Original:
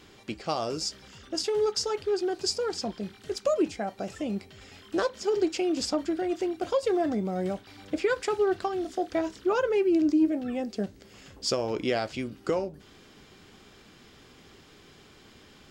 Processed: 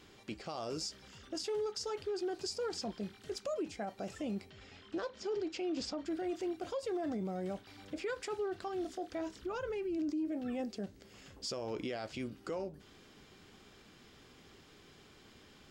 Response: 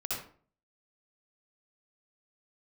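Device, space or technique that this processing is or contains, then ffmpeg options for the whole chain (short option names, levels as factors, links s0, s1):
stacked limiters: -filter_complex "[0:a]asettb=1/sr,asplit=3[s0][s1][s2];[s0]atrim=end=4.504[s3];[s1]atrim=start=4.5:end=6.06,asetpts=PTS-STARTPTS,afade=t=in:d=0.004:c=qsin,afade=t=out:st=1.556:d=0.004:c=qsin,lowpass=5400[s4];[s2]atrim=start=6.056[s5];[s3][s4]acrossfade=d=0.004:c1=hsin:c2=qsin[s6];[s6][s5]acrossfade=d=0.004:c1=qsin:c2=hsin,alimiter=limit=0.0944:level=0:latency=1:release=216,alimiter=level_in=1.12:limit=0.0631:level=0:latency=1:release=21,volume=0.891,asplit=3[s7][s8][s9];[s7]afade=t=out:st=9.41:d=0.02[s10];[s8]asubboost=boost=3.5:cutoff=180,afade=t=in:st=9.41:d=0.02,afade=t=out:st=9.97:d=0.02[s11];[s9]afade=t=in:st=9.97:d=0.02[s12];[s10][s11][s12]amix=inputs=3:normalize=0,volume=0.531"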